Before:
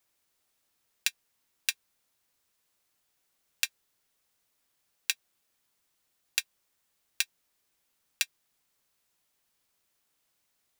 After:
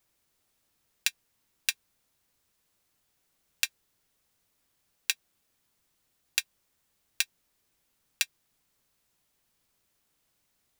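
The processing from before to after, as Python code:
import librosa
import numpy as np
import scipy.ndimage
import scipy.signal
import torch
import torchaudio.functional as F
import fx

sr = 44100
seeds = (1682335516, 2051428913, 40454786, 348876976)

y = fx.low_shelf(x, sr, hz=300.0, db=8.0)
y = y * 10.0 ** (1.0 / 20.0)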